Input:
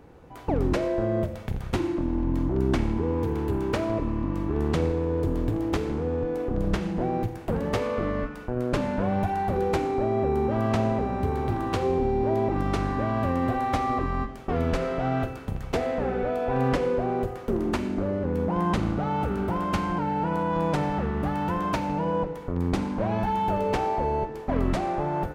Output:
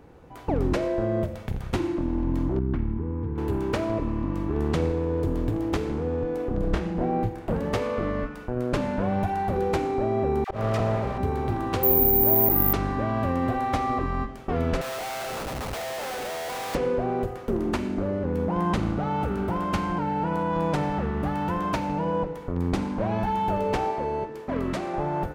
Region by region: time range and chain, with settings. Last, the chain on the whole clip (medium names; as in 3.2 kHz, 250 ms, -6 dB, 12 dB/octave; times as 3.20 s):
2.59–3.38 s: low-pass 1.2 kHz + peaking EQ 630 Hz -14 dB 1.5 oct
6.59–7.54 s: treble shelf 3.6 kHz -6.5 dB + doubling 28 ms -6 dB
10.44–11.18 s: comb filter that takes the minimum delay 1.6 ms + phase dispersion lows, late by 61 ms, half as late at 920 Hz + slow attack 105 ms
11.83–12.73 s: median filter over 9 samples + careless resampling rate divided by 3×, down none, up zero stuff
14.81–16.75 s: high-pass 570 Hz 24 dB/octave + Schmitt trigger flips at -45.5 dBFS + three bands expanded up and down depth 40%
23.91–24.94 s: high-pass 170 Hz 6 dB/octave + peaking EQ 770 Hz -7 dB 0.32 oct
whole clip: none